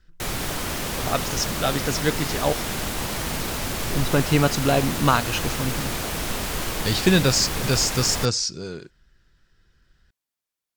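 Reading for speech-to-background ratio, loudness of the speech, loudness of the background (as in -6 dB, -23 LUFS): 4.0 dB, -23.0 LUFS, -27.0 LUFS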